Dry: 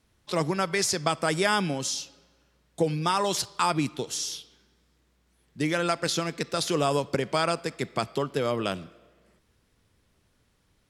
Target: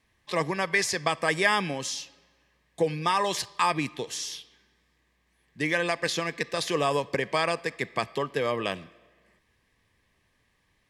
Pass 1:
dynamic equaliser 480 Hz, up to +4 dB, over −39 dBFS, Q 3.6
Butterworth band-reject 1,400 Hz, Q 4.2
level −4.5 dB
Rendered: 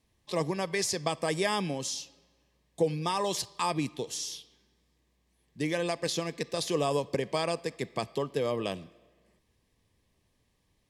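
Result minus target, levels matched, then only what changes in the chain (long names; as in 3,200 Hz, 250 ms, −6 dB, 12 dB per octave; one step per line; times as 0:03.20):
2,000 Hz band −6.5 dB
add after Butterworth band-reject: parametric band 1,700 Hz +12 dB 1.5 octaves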